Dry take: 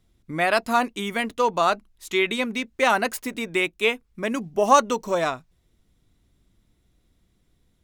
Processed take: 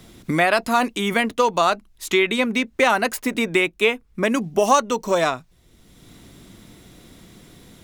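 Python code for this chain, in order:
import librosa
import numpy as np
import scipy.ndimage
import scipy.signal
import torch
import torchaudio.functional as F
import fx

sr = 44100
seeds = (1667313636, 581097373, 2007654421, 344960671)

y = fx.transient(x, sr, attack_db=-2, sustain_db=4, at=(0.56, 1.14))
y = fx.band_squash(y, sr, depth_pct=70)
y = F.gain(torch.from_numpy(y), 3.0).numpy()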